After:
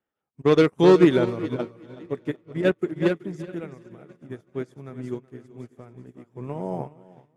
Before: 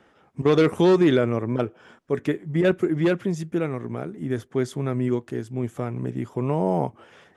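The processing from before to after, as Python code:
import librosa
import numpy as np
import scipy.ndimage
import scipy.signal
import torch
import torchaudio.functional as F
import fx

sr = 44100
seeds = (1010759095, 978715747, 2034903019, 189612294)

y = fx.reverse_delay_fb(x, sr, ms=516, feedback_pct=50, wet_db=-13.0)
y = fx.echo_feedback(y, sr, ms=377, feedback_pct=42, wet_db=-8.5)
y = fx.upward_expand(y, sr, threshold_db=-35.0, expansion=2.5)
y = y * librosa.db_to_amplitude(3.5)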